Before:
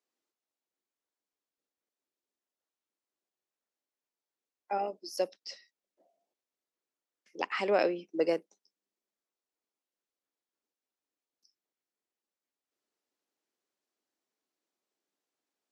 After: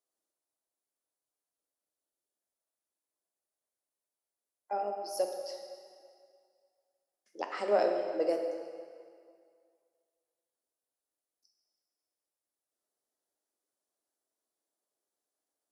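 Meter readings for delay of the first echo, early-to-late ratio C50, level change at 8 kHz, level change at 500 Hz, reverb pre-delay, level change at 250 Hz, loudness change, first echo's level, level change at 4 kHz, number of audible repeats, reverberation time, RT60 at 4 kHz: no echo audible, 4.5 dB, +2.0 dB, +0.5 dB, 9 ms, −3.5 dB, −1.0 dB, no echo audible, −4.0 dB, no echo audible, 2.1 s, 1.9 s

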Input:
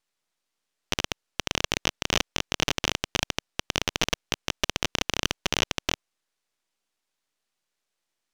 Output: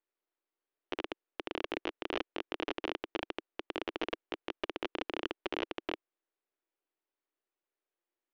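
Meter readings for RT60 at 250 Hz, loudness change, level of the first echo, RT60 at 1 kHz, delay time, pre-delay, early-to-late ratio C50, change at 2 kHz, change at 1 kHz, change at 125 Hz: no reverb audible, −11.5 dB, no echo audible, no reverb audible, no echo audible, no reverb audible, no reverb audible, −11.5 dB, −8.0 dB, −23.5 dB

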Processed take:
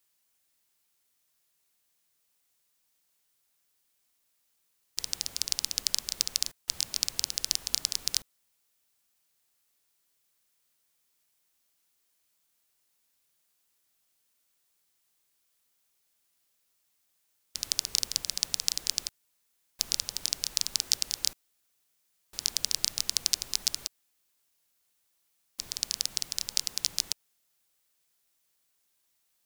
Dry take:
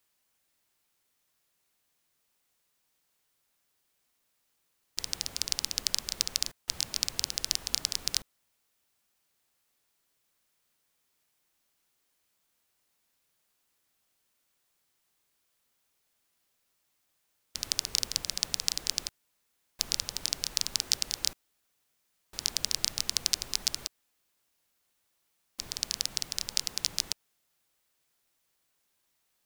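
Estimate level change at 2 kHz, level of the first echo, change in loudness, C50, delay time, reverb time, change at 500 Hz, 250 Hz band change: −2.0 dB, no echo audible, +1.0 dB, no reverb audible, no echo audible, no reverb audible, −4.0 dB, −4.0 dB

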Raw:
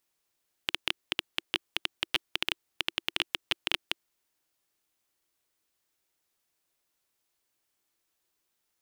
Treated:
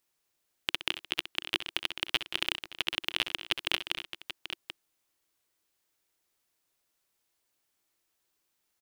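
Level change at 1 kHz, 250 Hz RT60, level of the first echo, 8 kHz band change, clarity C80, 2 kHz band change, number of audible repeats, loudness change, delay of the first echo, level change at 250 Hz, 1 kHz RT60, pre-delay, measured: +0.5 dB, no reverb audible, −12.5 dB, +0.5 dB, no reverb audible, +0.5 dB, 4, 0.0 dB, 64 ms, +0.5 dB, no reverb audible, no reverb audible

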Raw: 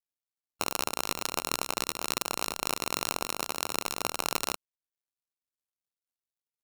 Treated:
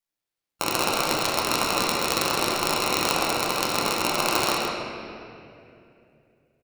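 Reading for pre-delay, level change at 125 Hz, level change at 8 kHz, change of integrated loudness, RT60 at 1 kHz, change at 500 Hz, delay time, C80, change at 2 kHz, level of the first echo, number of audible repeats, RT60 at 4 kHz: 6 ms, +11.5 dB, +5.0 dB, +8.0 dB, 2.3 s, +11.0 dB, 133 ms, −0.5 dB, +9.5 dB, −7.0 dB, 1, 1.8 s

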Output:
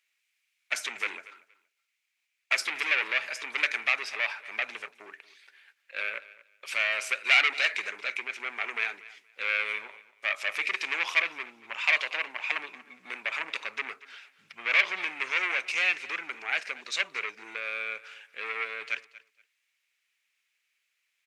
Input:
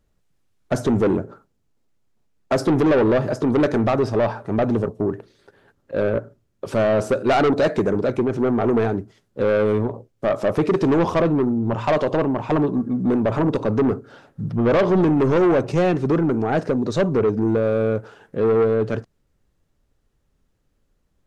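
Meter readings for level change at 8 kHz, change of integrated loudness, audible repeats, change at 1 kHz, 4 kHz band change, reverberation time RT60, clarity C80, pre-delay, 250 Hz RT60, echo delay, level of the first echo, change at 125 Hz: can't be measured, −8.0 dB, 2, −12.0 dB, +5.5 dB, no reverb audible, no reverb audible, no reverb audible, no reverb audible, 235 ms, −19.0 dB, below −40 dB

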